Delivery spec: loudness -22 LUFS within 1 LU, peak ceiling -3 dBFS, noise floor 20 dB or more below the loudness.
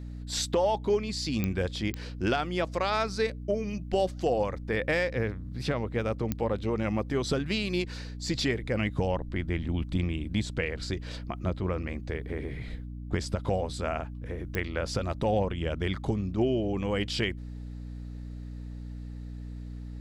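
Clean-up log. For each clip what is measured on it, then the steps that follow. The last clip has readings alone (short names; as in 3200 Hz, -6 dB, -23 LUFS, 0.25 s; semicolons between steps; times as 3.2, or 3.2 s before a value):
clicks 4; hum 60 Hz; harmonics up to 300 Hz; hum level -37 dBFS; loudness -30.5 LUFS; peak -13.0 dBFS; loudness target -22.0 LUFS
-> de-click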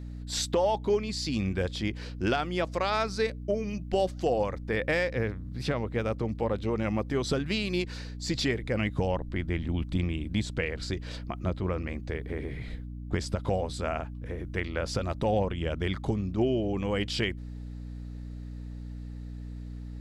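clicks 0; hum 60 Hz; harmonics up to 300 Hz; hum level -37 dBFS
-> de-hum 60 Hz, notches 5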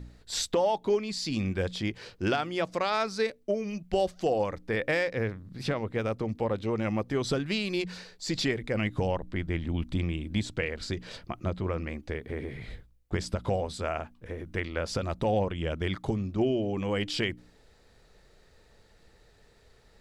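hum none; loudness -31.0 LUFS; peak -13.5 dBFS; loudness target -22.0 LUFS
-> gain +9 dB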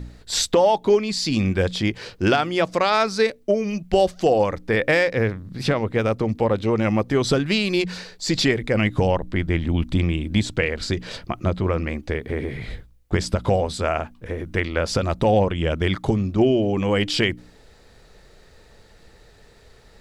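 loudness -22.0 LUFS; peak -4.5 dBFS; noise floor -51 dBFS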